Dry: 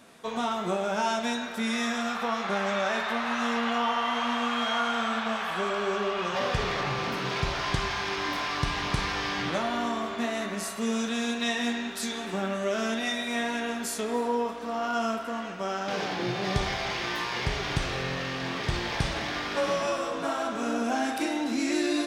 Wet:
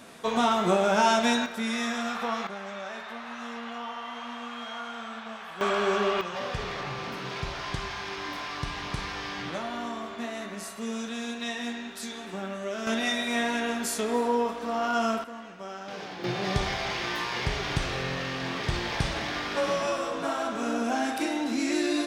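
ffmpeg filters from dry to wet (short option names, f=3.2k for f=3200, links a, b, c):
-af "asetnsamples=n=441:p=0,asendcmd='1.46 volume volume -1dB;2.47 volume volume -10dB;5.61 volume volume 3dB;6.21 volume volume -5dB;12.87 volume volume 2dB;15.24 volume volume -8dB;16.24 volume volume 0dB',volume=5.5dB"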